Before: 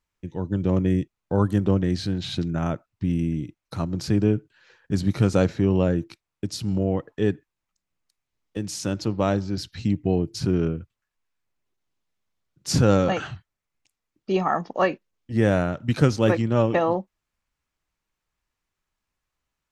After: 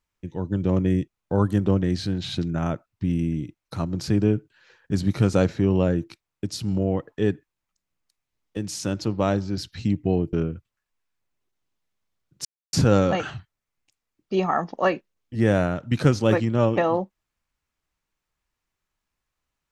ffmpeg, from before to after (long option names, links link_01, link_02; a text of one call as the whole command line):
ffmpeg -i in.wav -filter_complex "[0:a]asplit=3[link_01][link_02][link_03];[link_01]atrim=end=10.332[link_04];[link_02]atrim=start=10.578:end=12.7,asetpts=PTS-STARTPTS,afade=type=out:start_time=2.118:duration=0.004:curve=hsin,apad=pad_dur=0.28[link_05];[link_03]atrim=start=12.7,asetpts=PTS-STARTPTS,afade=type=in:duration=0.004:curve=hsin[link_06];[link_05][link_06]concat=n=2:v=0:a=1[link_07];[link_04][link_07]acrossfade=duration=0.004:curve1=hsin:curve2=hsin" out.wav